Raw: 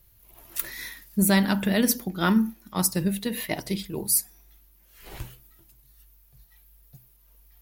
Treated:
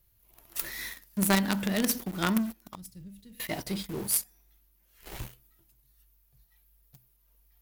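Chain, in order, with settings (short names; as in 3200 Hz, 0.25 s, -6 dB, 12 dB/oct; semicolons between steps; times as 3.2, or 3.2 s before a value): in parallel at -5 dB: companded quantiser 2-bit; 2.75–3.4 on the sum: passive tone stack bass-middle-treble 10-0-1; gain -8.5 dB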